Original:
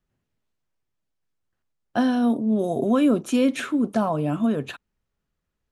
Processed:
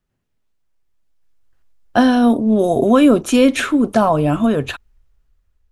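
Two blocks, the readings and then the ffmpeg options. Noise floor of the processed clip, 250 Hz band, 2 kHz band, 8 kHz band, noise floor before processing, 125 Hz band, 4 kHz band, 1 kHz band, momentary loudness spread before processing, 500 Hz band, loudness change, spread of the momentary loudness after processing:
−71 dBFS, +7.0 dB, +10.0 dB, +10.0 dB, −80 dBFS, +7.5 dB, +10.0 dB, +10.0 dB, 9 LU, +9.5 dB, +8.0 dB, 9 LU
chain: -af "dynaudnorm=framelen=350:gausssize=7:maxgain=11dB,asubboost=boost=11:cutoff=58,volume=2.5dB"

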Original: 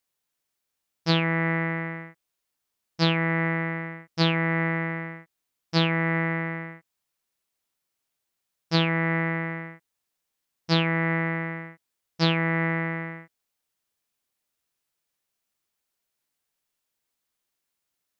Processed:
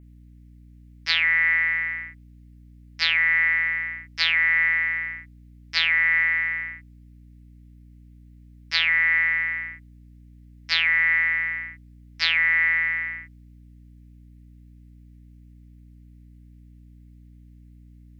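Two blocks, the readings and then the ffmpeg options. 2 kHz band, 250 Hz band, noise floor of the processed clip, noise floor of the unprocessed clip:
+9.5 dB, below −20 dB, −49 dBFS, −82 dBFS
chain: -af "adynamicequalizer=threshold=0.00708:dfrequency=5100:dqfactor=2.1:tfrequency=5100:tqfactor=2.1:attack=5:release=100:ratio=0.375:range=3:mode=boostabove:tftype=bell,highpass=frequency=2000:width_type=q:width=3.5,aeval=exprs='val(0)+0.00447*(sin(2*PI*60*n/s)+sin(2*PI*2*60*n/s)/2+sin(2*PI*3*60*n/s)/3+sin(2*PI*4*60*n/s)/4+sin(2*PI*5*60*n/s)/5)':channel_layout=same"

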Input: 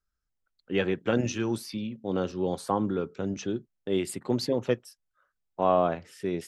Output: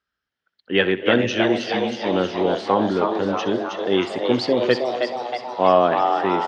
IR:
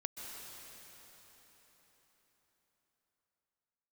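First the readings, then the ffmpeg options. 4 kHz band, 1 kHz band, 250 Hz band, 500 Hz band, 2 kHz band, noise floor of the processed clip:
+13.0 dB, +11.5 dB, +7.0 dB, +9.5 dB, +14.0 dB, −83 dBFS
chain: -filter_complex "[0:a]highpass=130,equalizer=frequency=150:width_type=q:width=4:gain=-9,equalizer=frequency=1800:width_type=q:width=4:gain=7,equalizer=frequency=3100:width_type=q:width=4:gain=7,lowpass=frequency=4900:width=0.5412,lowpass=frequency=4900:width=1.3066,asplit=9[link_01][link_02][link_03][link_04][link_05][link_06][link_07][link_08][link_09];[link_02]adelay=317,afreqshift=120,volume=-5dB[link_10];[link_03]adelay=634,afreqshift=240,volume=-9.6dB[link_11];[link_04]adelay=951,afreqshift=360,volume=-14.2dB[link_12];[link_05]adelay=1268,afreqshift=480,volume=-18.7dB[link_13];[link_06]adelay=1585,afreqshift=600,volume=-23.3dB[link_14];[link_07]adelay=1902,afreqshift=720,volume=-27.9dB[link_15];[link_08]adelay=2219,afreqshift=840,volume=-32.5dB[link_16];[link_09]adelay=2536,afreqshift=960,volume=-37.1dB[link_17];[link_01][link_10][link_11][link_12][link_13][link_14][link_15][link_16][link_17]amix=inputs=9:normalize=0,asplit=2[link_18][link_19];[1:a]atrim=start_sample=2205,adelay=64[link_20];[link_19][link_20]afir=irnorm=-1:irlink=0,volume=-12dB[link_21];[link_18][link_21]amix=inputs=2:normalize=0,volume=7.5dB"

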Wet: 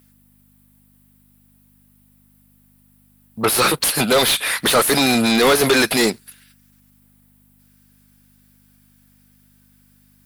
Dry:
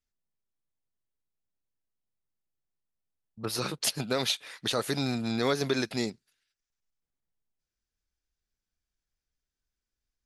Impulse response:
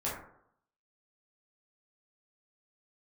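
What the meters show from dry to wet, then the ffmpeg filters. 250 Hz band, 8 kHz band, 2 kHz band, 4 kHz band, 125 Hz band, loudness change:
+12.5 dB, +16.0 dB, +17.5 dB, +13.5 dB, +7.0 dB, +14.5 dB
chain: -filter_complex "[0:a]aeval=exprs='val(0)+0.000501*(sin(2*PI*50*n/s)+sin(2*PI*2*50*n/s)/2+sin(2*PI*3*50*n/s)/3+sin(2*PI*4*50*n/s)/4+sin(2*PI*5*50*n/s)/5)':channel_layout=same,aexciter=amount=10.4:drive=3.3:freq=8800,asplit=2[link_01][link_02];[link_02]highpass=frequency=720:poles=1,volume=34dB,asoftclip=type=tanh:threshold=-4.5dB[link_03];[link_01][link_03]amix=inputs=2:normalize=0,lowpass=frequency=3400:poles=1,volume=-6dB"

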